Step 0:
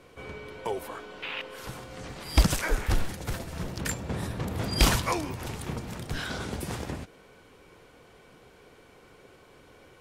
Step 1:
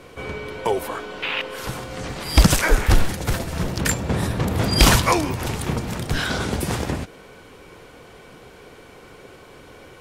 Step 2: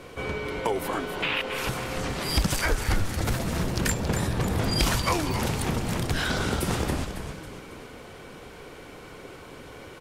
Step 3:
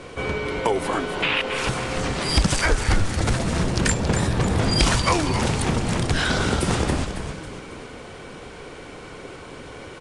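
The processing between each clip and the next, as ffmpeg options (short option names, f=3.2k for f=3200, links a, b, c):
-af "alimiter=level_in=11dB:limit=-1dB:release=50:level=0:latency=1,volume=-1dB"
-filter_complex "[0:a]acompressor=threshold=-24dB:ratio=3,asplit=2[a][b];[b]asplit=6[c][d][e][f][g][h];[c]adelay=275,afreqshift=-130,volume=-8dB[i];[d]adelay=550,afreqshift=-260,volume=-14.4dB[j];[e]adelay=825,afreqshift=-390,volume=-20.8dB[k];[f]adelay=1100,afreqshift=-520,volume=-27.1dB[l];[g]adelay=1375,afreqshift=-650,volume=-33.5dB[m];[h]adelay=1650,afreqshift=-780,volume=-39.9dB[n];[i][j][k][l][m][n]amix=inputs=6:normalize=0[o];[a][o]amix=inputs=2:normalize=0"
-af "aresample=22050,aresample=44100,volume=5dB"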